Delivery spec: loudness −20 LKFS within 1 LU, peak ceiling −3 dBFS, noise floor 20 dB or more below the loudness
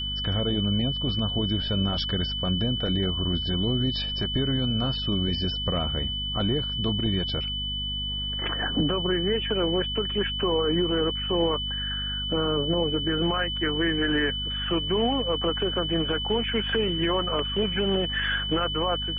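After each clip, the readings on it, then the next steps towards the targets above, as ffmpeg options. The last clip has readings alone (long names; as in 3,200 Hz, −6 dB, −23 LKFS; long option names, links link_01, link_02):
mains hum 50 Hz; hum harmonics up to 250 Hz; level of the hum −32 dBFS; interfering tone 3,000 Hz; level of the tone −29 dBFS; integrated loudness −25.5 LKFS; sample peak −13.5 dBFS; target loudness −20.0 LKFS
→ -af "bandreject=frequency=50:width_type=h:width=4,bandreject=frequency=100:width_type=h:width=4,bandreject=frequency=150:width_type=h:width=4,bandreject=frequency=200:width_type=h:width=4,bandreject=frequency=250:width_type=h:width=4"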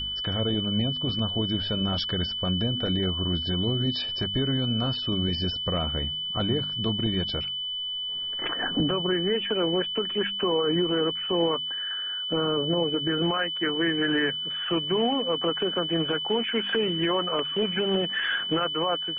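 mains hum none found; interfering tone 3,000 Hz; level of the tone −29 dBFS
→ -af "bandreject=frequency=3000:width=30"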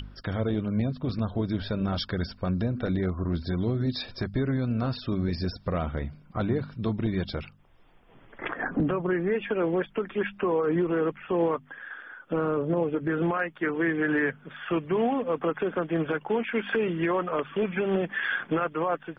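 interfering tone none found; integrated loudness −28.5 LKFS; sample peak −15.5 dBFS; target loudness −20.0 LKFS
→ -af "volume=8.5dB"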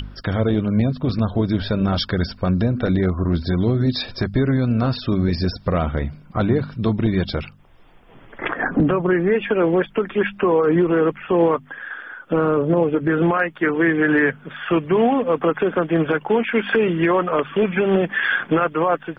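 integrated loudness −20.0 LKFS; sample peak −7.0 dBFS; background noise floor −47 dBFS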